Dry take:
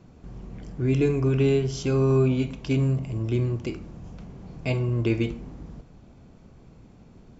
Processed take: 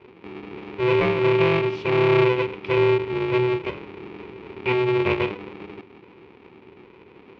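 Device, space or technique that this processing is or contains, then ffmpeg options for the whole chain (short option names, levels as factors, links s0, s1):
ring modulator pedal into a guitar cabinet: -af "aeval=exprs='val(0)*sgn(sin(2*PI*250*n/s))':c=same,highpass=100,equalizer=f=140:t=q:w=4:g=-3,equalizer=f=380:t=q:w=4:g=9,equalizer=f=640:t=q:w=4:g=-9,equalizer=f=960:t=q:w=4:g=4,equalizer=f=1600:t=q:w=4:g=-4,equalizer=f=2400:t=q:w=4:g=10,lowpass=f=3400:w=0.5412,lowpass=f=3400:w=1.3066"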